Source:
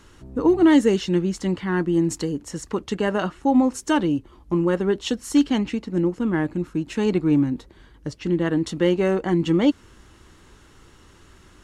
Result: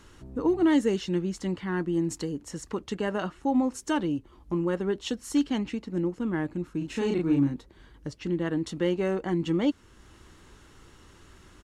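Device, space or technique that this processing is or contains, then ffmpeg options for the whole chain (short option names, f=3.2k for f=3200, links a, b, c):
parallel compression: -filter_complex "[0:a]asplit=3[a][b][c];[a]afade=t=out:st=6.8:d=0.02[d];[b]asplit=2[e][f];[f]adelay=36,volume=-2dB[g];[e][g]amix=inputs=2:normalize=0,afade=t=in:st=6.8:d=0.02,afade=t=out:st=7.54:d=0.02[h];[c]afade=t=in:st=7.54:d=0.02[i];[d][h][i]amix=inputs=3:normalize=0,asplit=2[j][k];[k]acompressor=threshold=-38dB:ratio=6,volume=-2dB[l];[j][l]amix=inputs=2:normalize=0,volume=-7.5dB"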